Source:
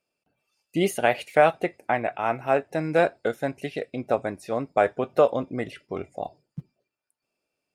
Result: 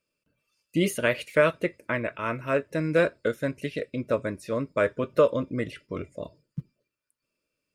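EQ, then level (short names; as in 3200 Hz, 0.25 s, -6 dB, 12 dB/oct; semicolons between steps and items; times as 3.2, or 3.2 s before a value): Butterworth band-stop 770 Hz, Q 2.2; low shelf 89 Hz +8.5 dB; notch 390 Hz, Q 12; 0.0 dB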